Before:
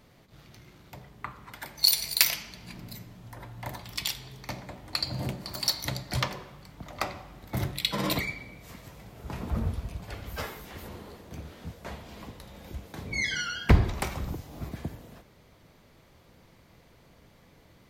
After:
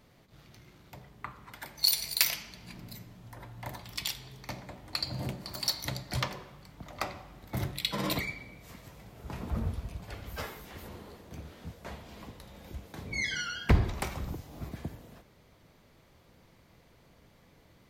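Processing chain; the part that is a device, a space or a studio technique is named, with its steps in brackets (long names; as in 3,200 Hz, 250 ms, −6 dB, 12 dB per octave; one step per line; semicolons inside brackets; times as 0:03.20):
parallel distortion (in parallel at −12 dB: hard clipping −19 dBFS, distortion −8 dB)
on the sum: level −5 dB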